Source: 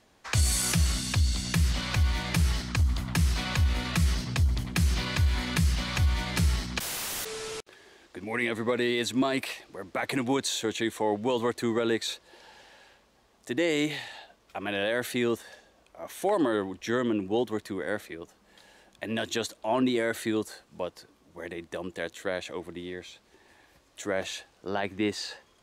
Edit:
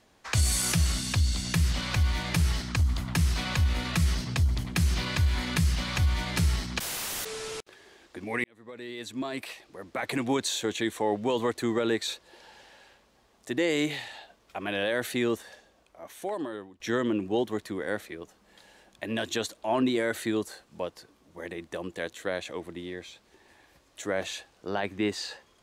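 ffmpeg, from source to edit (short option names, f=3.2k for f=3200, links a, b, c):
-filter_complex "[0:a]asplit=3[a][b][c];[a]atrim=end=8.44,asetpts=PTS-STARTPTS,afade=t=out:st=8.436:d=0.004:c=hsin[d];[b]atrim=start=8.44:end=16.8,asetpts=PTS-STARTPTS,afade=t=in:d=1.89,afade=t=out:st=6.99:d=1.37:silence=0.133352[e];[c]atrim=start=16.8,asetpts=PTS-STARTPTS,afade=t=in:d=0.004:c=hsin:silence=0.133352[f];[d][e][f]concat=n=3:v=0:a=1"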